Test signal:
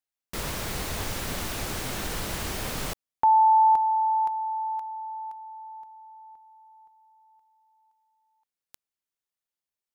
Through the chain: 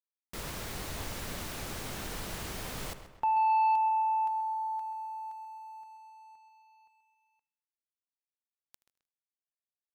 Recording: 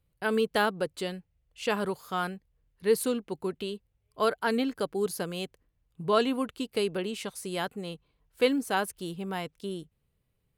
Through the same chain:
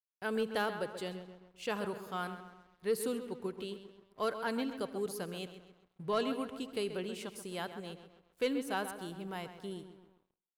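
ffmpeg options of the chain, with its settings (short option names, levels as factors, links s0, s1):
-filter_complex "[0:a]asplit=2[s0][s1];[s1]adelay=132,lowpass=f=3100:p=1,volume=0.316,asplit=2[s2][s3];[s3]adelay=132,lowpass=f=3100:p=1,volume=0.55,asplit=2[s4][s5];[s5]adelay=132,lowpass=f=3100:p=1,volume=0.55,asplit=2[s6][s7];[s7]adelay=132,lowpass=f=3100:p=1,volume=0.55,asplit=2[s8][s9];[s9]adelay=132,lowpass=f=3100:p=1,volume=0.55,asplit=2[s10][s11];[s11]adelay=132,lowpass=f=3100:p=1,volume=0.55[s12];[s2][s4][s6][s8][s10][s12]amix=inputs=6:normalize=0[s13];[s0][s13]amix=inputs=2:normalize=0,aeval=exprs='sgn(val(0))*max(abs(val(0))-0.0015,0)':c=same,asplit=2[s14][s15];[s15]aecho=0:1:77|154|231|308:0.0891|0.0446|0.0223|0.0111[s16];[s14][s16]amix=inputs=2:normalize=0,asoftclip=type=tanh:threshold=0.188,volume=0.447"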